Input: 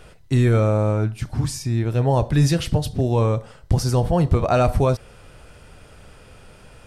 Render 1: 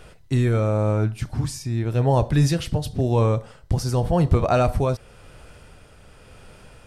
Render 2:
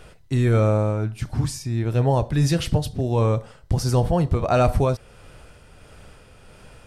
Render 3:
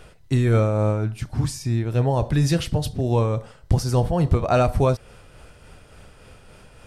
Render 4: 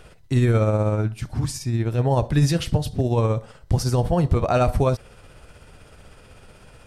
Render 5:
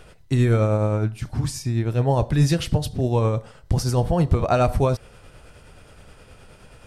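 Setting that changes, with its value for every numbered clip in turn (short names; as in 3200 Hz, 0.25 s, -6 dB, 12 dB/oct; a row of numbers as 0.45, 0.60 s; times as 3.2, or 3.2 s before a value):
tremolo, rate: 0.92, 1.5, 3.5, 16, 9.5 Hz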